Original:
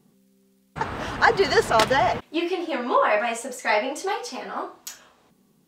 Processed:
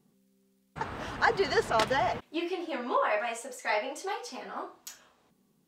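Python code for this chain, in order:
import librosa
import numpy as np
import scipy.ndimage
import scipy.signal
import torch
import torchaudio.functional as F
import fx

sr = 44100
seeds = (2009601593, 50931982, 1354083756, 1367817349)

y = fx.high_shelf(x, sr, hz=10000.0, db=-6.5, at=(1.41, 1.87))
y = fx.highpass(y, sr, hz=300.0, slope=12, at=(2.97, 4.3))
y = y * 10.0 ** (-7.5 / 20.0)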